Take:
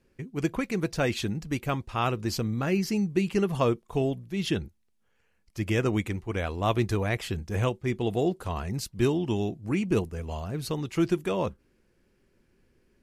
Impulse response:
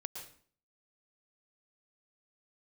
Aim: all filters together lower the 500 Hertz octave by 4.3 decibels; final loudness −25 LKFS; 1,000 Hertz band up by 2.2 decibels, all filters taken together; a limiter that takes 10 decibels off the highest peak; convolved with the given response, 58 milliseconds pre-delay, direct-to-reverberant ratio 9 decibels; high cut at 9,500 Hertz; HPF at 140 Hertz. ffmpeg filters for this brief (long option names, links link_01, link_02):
-filter_complex "[0:a]highpass=140,lowpass=9500,equalizer=frequency=500:width_type=o:gain=-7,equalizer=frequency=1000:width_type=o:gain=5,alimiter=limit=-21dB:level=0:latency=1,asplit=2[link_01][link_02];[1:a]atrim=start_sample=2205,adelay=58[link_03];[link_02][link_03]afir=irnorm=-1:irlink=0,volume=-7dB[link_04];[link_01][link_04]amix=inputs=2:normalize=0,volume=8dB"